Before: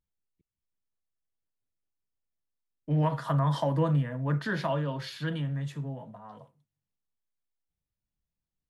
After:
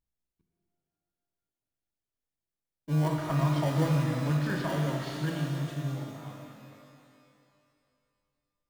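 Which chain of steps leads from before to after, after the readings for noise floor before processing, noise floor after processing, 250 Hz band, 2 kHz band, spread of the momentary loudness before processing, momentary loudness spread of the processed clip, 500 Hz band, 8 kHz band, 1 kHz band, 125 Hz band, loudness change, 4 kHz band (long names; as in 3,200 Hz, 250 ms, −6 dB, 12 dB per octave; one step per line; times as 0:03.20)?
below −85 dBFS, below −85 dBFS, +1.5 dB, 0.0 dB, 14 LU, 15 LU, −1.5 dB, can't be measured, −2.0 dB, +0.5 dB, 0.0 dB, +0.5 dB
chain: in parallel at −5.5 dB: sample-rate reduction 1,300 Hz, jitter 0%
on the sum: reverb with rising layers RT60 2.4 s, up +12 semitones, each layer −8 dB, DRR 1 dB
level −5.5 dB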